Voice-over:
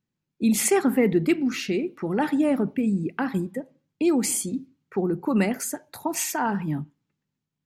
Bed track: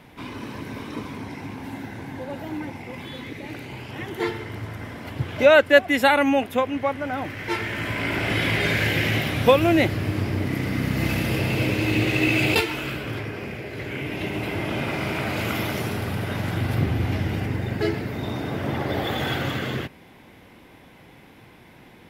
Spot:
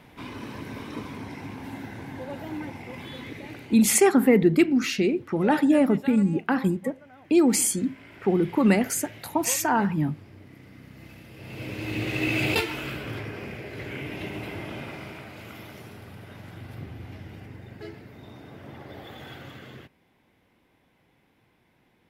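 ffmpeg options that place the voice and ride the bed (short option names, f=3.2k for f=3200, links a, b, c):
-filter_complex "[0:a]adelay=3300,volume=2.5dB[a];[1:a]volume=16dB,afade=t=out:st=3.35:d=0.73:silence=0.1,afade=t=in:st=11.35:d=1.09:silence=0.112202,afade=t=out:st=13.87:d=1.43:silence=0.237137[b];[a][b]amix=inputs=2:normalize=0"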